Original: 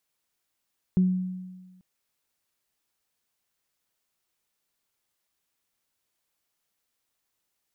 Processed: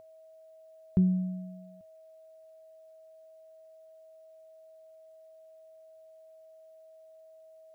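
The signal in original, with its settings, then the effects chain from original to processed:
harmonic partials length 0.84 s, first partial 184 Hz, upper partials −17 dB, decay 1.35 s, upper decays 0.33 s, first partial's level −16 dB
steady tone 640 Hz −45 dBFS
thirty-one-band graphic EQ 100 Hz +8 dB, 160 Hz −3 dB, 630 Hz −7 dB

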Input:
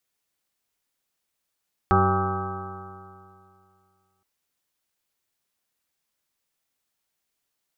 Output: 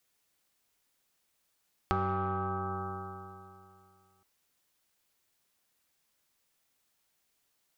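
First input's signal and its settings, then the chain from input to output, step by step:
stiff-string partials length 2.32 s, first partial 93.7 Hz, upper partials −3/−19/−1.5/−16.5/−15/−18/0/−14.5/−18.5/−3/−1/−18/−13 dB, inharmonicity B 0.0021, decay 2.41 s, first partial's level −20.5 dB
in parallel at −5.5 dB: soft clipping −22 dBFS
on the sum: downward compressor 4 to 1, threshold −31 dBFS

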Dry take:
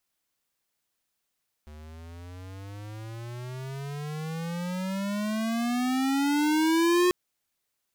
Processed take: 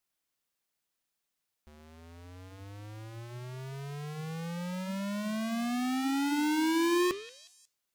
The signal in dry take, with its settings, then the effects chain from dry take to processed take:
pitch glide with a swell square, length 5.44 s, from 74.2 Hz, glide +27.5 semitones, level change +24 dB, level −21 dB
parametric band 76 Hz −9 dB 0.27 octaves
flanger 0.79 Hz, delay 4.7 ms, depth 9.6 ms, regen −88%
echo through a band-pass that steps 181 ms, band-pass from 2,900 Hz, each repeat 0.7 octaves, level −10 dB

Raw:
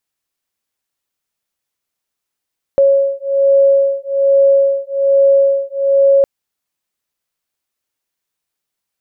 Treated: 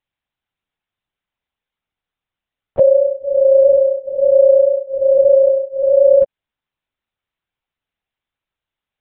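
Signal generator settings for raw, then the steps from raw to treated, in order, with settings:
two tones that beat 551 Hz, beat 1.2 Hz, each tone −12 dBFS 3.46 s
linear-prediction vocoder at 8 kHz whisper

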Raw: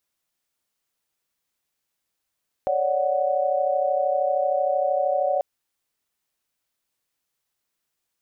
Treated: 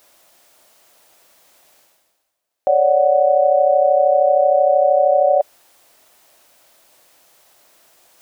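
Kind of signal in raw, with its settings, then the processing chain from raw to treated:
held notes C#5/D5/F#5 sine, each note −24 dBFS 2.74 s
low shelf with overshoot 510 Hz −6 dB, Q 3
reversed playback
upward compression, threshold −33 dBFS
reversed playback
parametric band 380 Hz +14 dB 1.1 octaves

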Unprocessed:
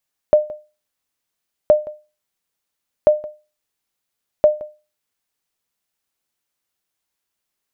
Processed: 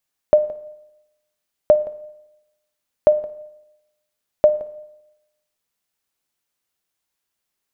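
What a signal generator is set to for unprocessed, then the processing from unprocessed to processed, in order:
ping with an echo 605 Hz, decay 0.30 s, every 1.37 s, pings 4, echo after 0.17 s, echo −20.5 dB −3.5 dBFS
four-comb reverb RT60 0.91 s, DRR 17 dB

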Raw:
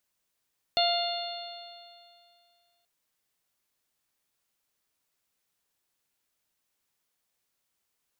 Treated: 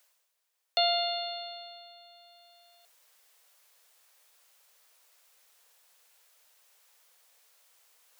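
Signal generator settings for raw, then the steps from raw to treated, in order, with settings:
stiff-string partials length 2.08 s, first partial 692 Hz, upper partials −14/−15/−7.5/−4.5/−2.5 dB, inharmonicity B 0.0022, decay 2.35 s, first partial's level −23.5 dB
Butterworth high-pass 440 Hz 96 dB per octave
reversed playback
upward compression, threshold −50 dBFS
reversed playback

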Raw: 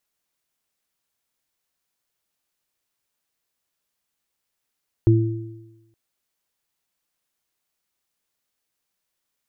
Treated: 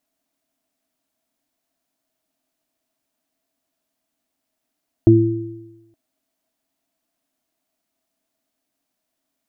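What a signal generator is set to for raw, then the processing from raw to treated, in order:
harmonic partials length 0.87 s, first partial 112 Hz, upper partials −16.5/−3.5 dB, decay 1.02 s, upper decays 0.56/1.05 s, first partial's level −11 dB
hollow resonant body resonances 270/650 Hz, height 18 dB, ringing for 55 ms

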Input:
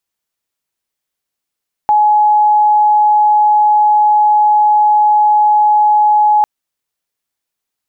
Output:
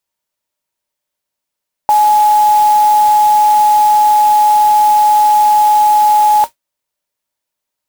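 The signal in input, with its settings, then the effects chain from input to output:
tone sine 843 Hz −6.5 dBFS 4.55 s
noise that follows the level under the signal 17 dB
hollow resonant body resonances 590/930 Hz, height 12 dB, ringing for 90 ms

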